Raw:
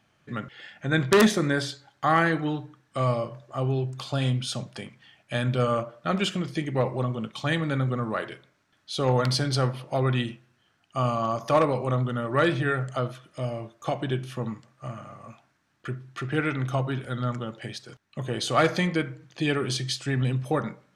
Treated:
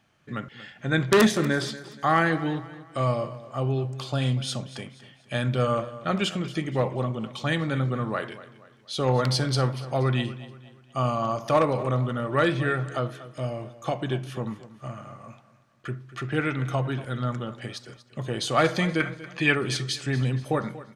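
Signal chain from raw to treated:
0:19.00–0:19.55: flat-topped bell 1,600 Hz +9.5 dB
on a send: repeating echo 238 ms, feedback 41%, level −16.5 dB

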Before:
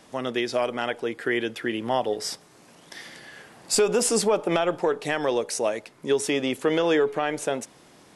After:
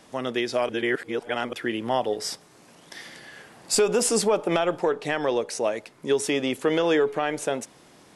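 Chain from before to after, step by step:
0:00.69–0:01.53: reverse
0:04.89–0:05.77: high-shelf EQ 8,300 Hz −9.5 dB

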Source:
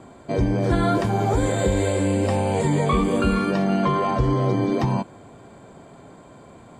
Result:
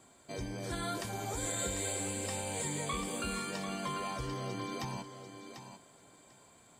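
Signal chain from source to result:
first-order pre-emphasis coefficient 0.9
feedback echo with a high-pass in the loop 744 ms, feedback 16%, high-pass 180 Hz, level −8.5 dB

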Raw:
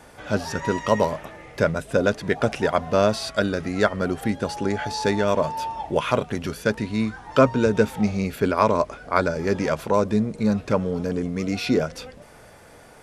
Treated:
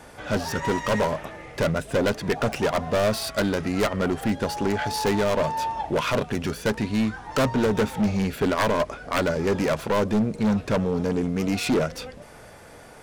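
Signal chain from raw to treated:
phase distortion by the signal itself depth 0.4 ms
hard clipping −19.5 dBFS, distortion −8 dB
level +2 dB

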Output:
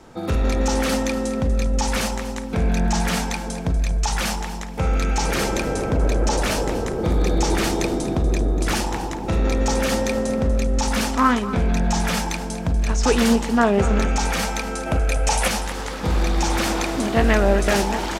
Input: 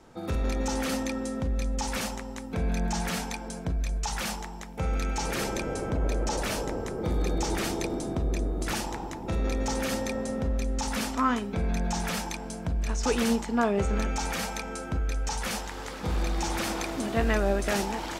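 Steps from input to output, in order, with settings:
0:14.86–0:15.48: graphic EQ with 15 bands 630 Hz +11 dB, 2,500 Hz +7 dB, 10,000 Hz +12 dB
repeating echo 241 ms, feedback 24%, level −14 dB
highs frequency-modulated by the lows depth 0.16 ms
level +8 dB

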